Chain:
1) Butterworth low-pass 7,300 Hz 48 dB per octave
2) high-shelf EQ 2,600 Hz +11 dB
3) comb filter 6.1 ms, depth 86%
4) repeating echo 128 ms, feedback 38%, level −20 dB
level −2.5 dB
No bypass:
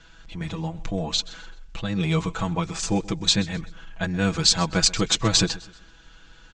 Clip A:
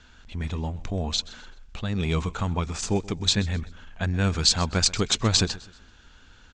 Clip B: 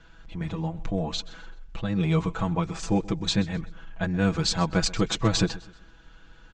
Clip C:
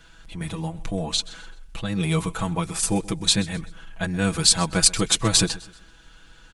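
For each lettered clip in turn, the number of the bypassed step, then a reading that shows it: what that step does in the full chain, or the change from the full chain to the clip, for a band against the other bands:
3, 125 Hz band +3.5 dB
2, 8 kHz band −8.5 dB
1, 8 kHz band +4.5 dB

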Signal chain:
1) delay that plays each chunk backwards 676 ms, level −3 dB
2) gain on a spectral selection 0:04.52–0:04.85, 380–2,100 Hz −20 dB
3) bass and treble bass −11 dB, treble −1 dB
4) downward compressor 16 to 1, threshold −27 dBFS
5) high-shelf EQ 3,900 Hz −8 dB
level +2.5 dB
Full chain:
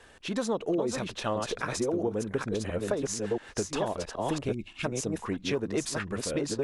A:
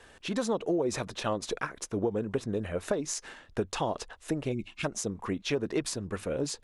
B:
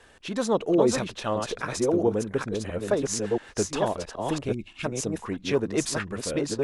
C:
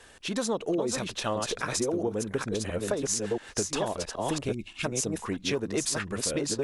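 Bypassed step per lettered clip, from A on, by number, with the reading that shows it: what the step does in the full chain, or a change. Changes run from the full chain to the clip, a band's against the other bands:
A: 1, change in crest factor +2.0 dB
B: 4, average gain reduction 2.5 dB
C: 5, 8 kHz band +6.0 dB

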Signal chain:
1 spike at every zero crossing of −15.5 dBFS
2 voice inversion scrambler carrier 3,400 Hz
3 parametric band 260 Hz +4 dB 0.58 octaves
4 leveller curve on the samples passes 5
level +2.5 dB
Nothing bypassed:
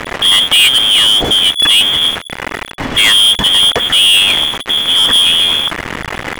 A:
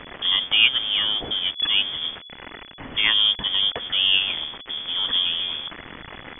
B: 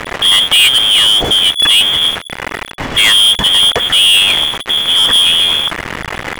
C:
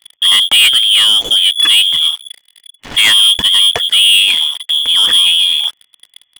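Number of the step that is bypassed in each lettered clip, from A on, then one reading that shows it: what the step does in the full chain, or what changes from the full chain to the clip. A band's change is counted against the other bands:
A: 4, change in crest factor +13.0 dB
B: 3, 250 Hz band −2.0 dB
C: 1, distortion level −5 dB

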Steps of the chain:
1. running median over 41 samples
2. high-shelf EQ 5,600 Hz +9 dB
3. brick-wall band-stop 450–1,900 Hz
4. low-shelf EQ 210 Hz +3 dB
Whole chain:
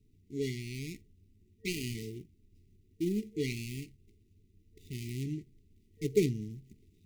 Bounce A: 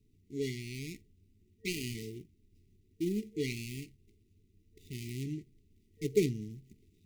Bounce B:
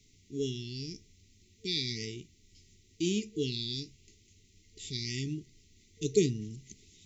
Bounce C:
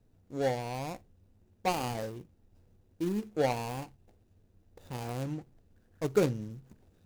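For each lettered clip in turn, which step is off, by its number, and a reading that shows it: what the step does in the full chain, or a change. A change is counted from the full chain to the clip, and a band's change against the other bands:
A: 4, 125 Hz band −2.0 dB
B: 1, 4 kHz band +10.0 dB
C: 3, 500 Hz band +3.5 dB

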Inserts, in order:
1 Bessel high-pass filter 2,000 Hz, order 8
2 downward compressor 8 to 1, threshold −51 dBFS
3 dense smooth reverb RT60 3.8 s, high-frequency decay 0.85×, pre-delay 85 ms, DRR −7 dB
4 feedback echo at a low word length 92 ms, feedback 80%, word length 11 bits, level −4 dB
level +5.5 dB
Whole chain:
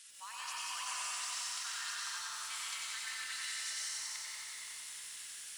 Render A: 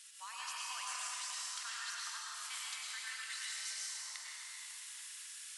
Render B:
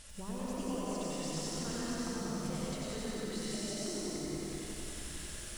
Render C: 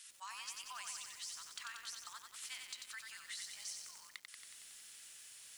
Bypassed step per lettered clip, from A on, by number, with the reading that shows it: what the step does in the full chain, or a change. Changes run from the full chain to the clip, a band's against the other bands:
4, change in crest factor +2.0 dB
1, 500 Hz band +32.0 dB
3, 500 Hz band +2.0 dB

